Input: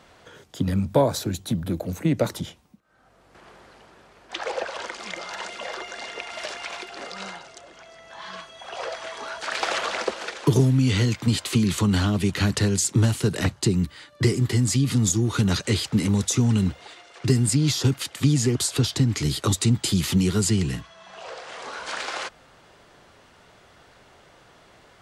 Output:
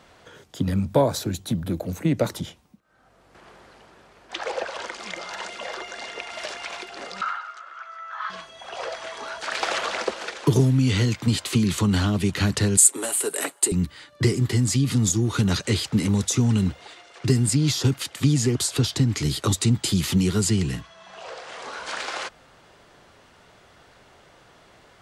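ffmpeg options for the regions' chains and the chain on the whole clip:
ffmpeg -i in.wav -filter_complex "[0:a]asettb=1/sr,asplit=3[link_01][link_02][link_03];[link_01]atrim=end=7.214[link_04];[link_02]atrim=start=7.21:end=8.3,asetpts=PTS-STARTPTS,afade=type=in:duration=0.004:curve=qsin,afade=type=out:start_time=1.086:duration=0.004:curve=qsin,highpass=frequency=1300:width_type=q:width=10,aemphasis=mode=reproduction:type=riaa,asplit=2[link_05][link_06];[link_06]adelay=15,volume=-8dB[link_07];[link_05][link_07]amix=inputs=2:normalize=0,atrim=end_sample=48069[link_08];[link_03]atrim=start=8.296[link_09];[link_04][link_08]acrossfade=duration=0.004:curve1=hsin:curve2=qsin[link_10];[link_10][link_09]acrossfade=duration=0.004:curve1=qsin:curve2=hsin,asettb=1/sr,asplit=3[link_11][link_12][link_13];[link_11]atrim=end=12.774[link_14];[link_12]atrim=start=12.77:end=13.72,asetpts=PTS-STARTPTS,afade=type=in:duration=0.004:curve=qsin,afade=type=out:start_time=0.946:duration=0.004:curve=qsin,highpass=frequency=360:width=0.5412,highpass=frequency=360:width=1.3066,highshelf=frequency=7000:width_type=q:width=3:gain=8.5,aecho=1:1:7.2:0.35,atrim=end_sample=41895[link_15];[link_13]atrim=start=13.716[link_16];[link_14][link_15]acrossfade=duration=0.004:curve1=hsin:curve2=qsin[link_17];[link_17][link_16]acrossfade=duration=0.004:curve1=qsin:curve2=hsin" out.wav

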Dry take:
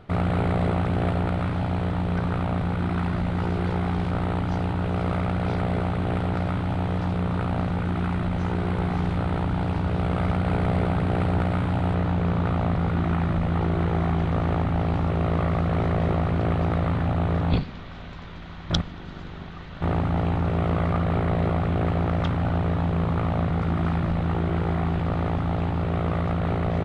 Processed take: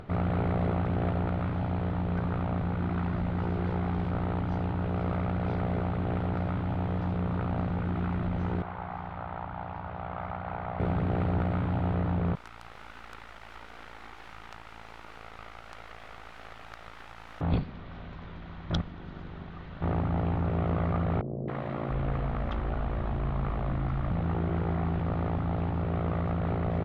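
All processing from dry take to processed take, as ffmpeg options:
ffmpeg -i in.wav -filter_complex "[0:a]asettb=1/sr,asplit=3[link_01][link_02][link_03];[link_01]atrim=end=8.624[link_04];[link_02]atrim=start=8.62:end=10.8,asetpts=PTS-STARTPTS,afade=type=in:duration=0.004:curve=qsin,afade=type=out:start_time=2.176:duration=0.004:curve=qsin,lowpass=frequency=1700:poles=1,lowshelf=frequency=560:width_type=q:width=1.5:gain=-11.5[link_05];[link_03]atrim=start=10.796[link_06];[link_04][link_05]acrossfade=duration=0.004:curve1=hsin:curve2=qsin[link_07];[link_07][link_06]acrossfade=duration=0.004:curve1=qsin:curve2=hsin,asettb=1/sr,asplit=3[link_08][link_09][link_10];[link_08]atrim=end=12.354[link_11];[link_09]atrim=start=12.35:end=17.41,asetpts=PTS-STARTPTS,afade=type=in:duration=0.004:curve=qsin,afade=type=out:start_time=5.056:duration=0.004:curve=qsin,highpass=1400,afreqshift=56,acrusher=bits=5:dc=4:mix=0:aa=0.000001[link_12];[link_10]atrim=start=17.406[link_13];[link_11][link_12]acrossfade=duration=0.004:curve1=hsin:curve2=qsin[link_14];[link_14][link_13]acrossfade=duration=0.004:curve1=qsin:curve2=hsin,asettb=1/sr,asplit=3[link_15][link_16][link_17];[link_15]atrim=end=21.214[link_18];[link_16]atrim=start=21.21:end=24.11,asetpts=PTS-STARTPTS,afade=type=in:duration=0.004:curve=qsin,afade=type=out:start_time=2.896:duration=0.004:curve=qsin,acrossover=split=160|560[link_19][link_20][link_21];[link_21]adelay=270[link_22];[link_19]adelay=670[link_23];[link_23][link_20][link_22]amix=inputs=3:normalize=0,atrim=end_sample=127890,afreqshift=-33[link_24];[link_17]atrim=start=24.106[link_25];[link_18][link_24]acrossfade=duration=0.004:curve1=hsin:curve2=qsin[link_26];[link_26][link_25]acrossfade=duration=0.004:curve1=qsin:curve2=hsin,aemphasis=mode=reproduction:type=75fm,acompressor=mode=upward:threshold=-32dB:ratio=2.5,volume=-5.5dB" out.wav

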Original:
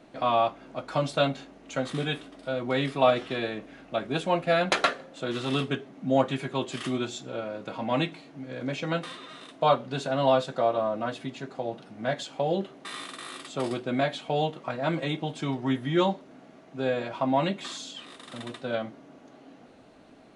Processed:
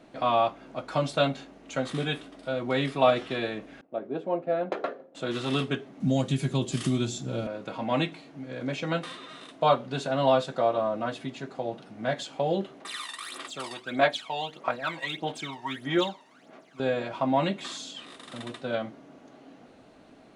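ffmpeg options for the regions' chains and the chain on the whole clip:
ffmpeg -i in.wav -filter_complex "[0:a]asettb=1/sr,asplit=3[link_01][link_02][link_03];[link_01]atrim=end=3.814[link_04];[link_02]atrim=start=3.81:end=5.15,asetpts=PTS-STARTPTS,afade=type=in:duration=0.004:curve=qsin,afade=type=out:start_time=1.336:duration=0.004:curve=qsin,agate=range=-33dB:threshold=-44dB:ratio=3:release=100:detection=peak,bandpass=frequency=420:width_type=q:width=1.3[link_05];[link_03]atrim=start=5.146[link_06];[link_04][link_05]acrossfade=duration=0.004:curve1=hsin:curve2=qsin[link_07];[link_07][link_06]acrossfade=duration=0.004:curve1=qsin:curve2=hsin,asettb=1/sr,asplit=3[link_08][link_09][link_10];[link_08]atrim=end=6.004[link_11];[link_09]atrim=start=6:end=7.47,asetpts=PTS-STARTPTS,afade=type=in:duration=0.004:curve=qsin,afade=type=out:start_time=1.466:duration=0.004:curve=qsin,bass=frequency=250:gain=13,treble=frequency=4000:gain=11,acrossover=split=750|2300[link_12][link_13][link_14];[link_12]acompressor=threshold=-22dB:ratio=4[link_15];[link_13]acompressor=threshold=-45dB:ratio=4[link_16];[link_14]acompressor=threshold=-37dB:ratio=4[link_17];[link_15][link_16][link_17]amix=inputs=3:normalize=0[link_18];[link_10]atrim=start=7.466[link_19];[link_11][link_18]acrossfade=duration=0.004:curve1=hsin:curve2=qsin[link_20];[link_20][link_19]acrossfade=duration=0.004:curve1=qsin:curve2=hsin,asettb=1/sr,asplit=3[link_21][link_22][link_23];[link_21]atrim=end=12.804[link_24];[link_22]atrim=start=12.8:end=16.8,asetpts=PTS-STARTPTS,afade=type=in:duration=0.004:curve=qsin,afade=type=out:start_time=3.996:duration=0.004:curve=qsin,highpass=frequency=940:poles=1,aphaser=in_gain=1:out_gain=1:delay=1.1:decay=0.69:speed=1.6:type=sinusoidal[link_25];[link_23]atrim=start=16.796[link_26];[link_24][link_25]acrossfade=duration=0.004:curve1=hsin:curve2=qsin[link_27];[link_27][link_26]acrossfade=duration=0.004:curve1=qsin:curve2=hsin" out.wav

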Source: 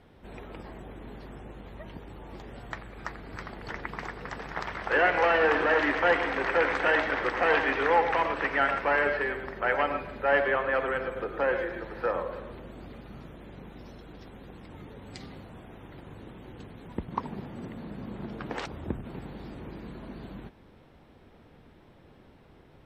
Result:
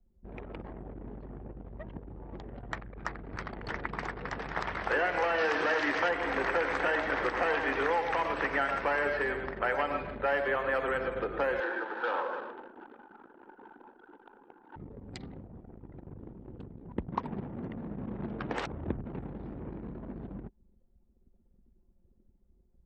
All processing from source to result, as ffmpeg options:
ffmpeg -i in.wav -filter_complex "[0:a]asettb=1/sr,asplit=3[link_01][link_02][link_03];[link_01]atrim=end=5.384[link_04];[link_02]atrim=start=5.38:end=6.09,asetpts=PTS-STARTPTS,afade=type=in:duration=0.004:curve=qsin,afade=type=out:start_time=0.706:duration=0.004:curve=qsin,highpass=86,equalizer=frequency=5400:width_type=o:width=1.6:gain=14.5[link_05];[link_03]atrim=start=6.086[link_06];[link_04][link_05]acrossfade=duration=0.004:curve1=hsin:curve2=qsin[link_07];[link_07][link_06]acrossfade=duration=0.004:curve1=qsin:curve2=hsin,asettb=1/sr,asplit=3[link_08][link_09][link_10];[link_08]atrim=end=11.604[link_11];[link_09]atrim=start=11.6:end=14.76,asetpts=PTS-STARTPTS,afade=type=in:duration=0.004:curve=qsin,afade=type=out:start_time=3.156:duration=0.004:curve=qsin,asoftclip=type=hard:threshold=-30.5dB,acrusher=bits=9:dc=4:mix=0:aa=0.000001,highpass=frequency=280:width=0.5412,highpass=frequency=280:width=1.3066,equalizer=frequency=620:width_type=q:width=4:gain=-5,equalizer=frequency=880:width_type=q:width=4:gain=10,equalizer=frequency=1500:width_type=q:width=4:gain=10,equalizer=frequency=2100:width_type=q:width=4:gain=-6,lowpass=frequency=3600:width=0.5412,lowpass=frequency=3600:width=1.3066[link_12];[link_10]atrim=start=14.756[link_13];[link_11][link_12]acrossfade=duration=0.004:curve1=hsin:curve2=qsin[link_14];[link_14][link_13]acrossfade=duration=0.004:curve1=qsin:curve2=hsin,anlmdn=0.158,highshelf=frequency=5000:gain=4.5,acrossover=split=2000|4000[link_15][link_16][link_17];[link_15]acompressor=threshold=-28dB:ratio=4[link_18];[link_16]acompressor=threshold=-45dB:ratio=4[link_19];[link_17]acompressor=threshold=-54dB:ratio=4[link_20];[link_18][link_19][link_20]amix=inputs=3:normalize=0,volume=1dB" out.wav

